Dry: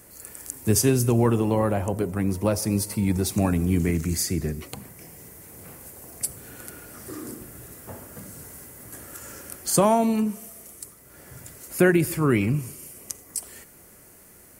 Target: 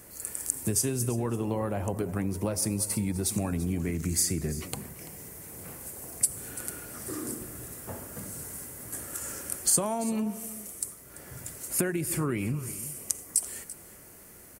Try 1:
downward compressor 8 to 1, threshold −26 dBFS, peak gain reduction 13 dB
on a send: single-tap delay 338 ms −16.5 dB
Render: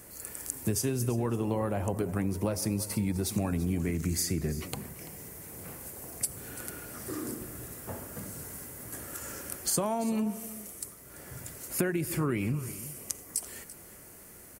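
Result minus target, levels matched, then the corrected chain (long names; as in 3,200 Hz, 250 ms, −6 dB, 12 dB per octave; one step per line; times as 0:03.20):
8,000 Hz band −3.5 dB
downward compressor 8 to 1, threshold −26 dBFS, peak gain reduction 13 dB
dynamic equaliser 8,700 Hz, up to +8 dB, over −50 dBFS, Q 1.3
on a send: single-tap delay 338 ms −16.5 dB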